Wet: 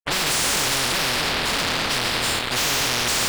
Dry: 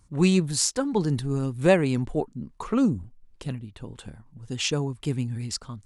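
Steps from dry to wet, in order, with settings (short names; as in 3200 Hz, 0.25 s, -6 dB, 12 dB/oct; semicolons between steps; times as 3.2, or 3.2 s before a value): spectral trails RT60 1.93 s; passive tone stack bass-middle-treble 5-5-5; sample leveller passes 2; plain phase-vocoder stretch 0.56×; on a send: flutter echo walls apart 4.2 m, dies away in 0.23 s; on the sum: fuzz box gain 50 dB, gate -56 dBFS; air absorption 460 m; spectral compressor 10:1; gain +3 dB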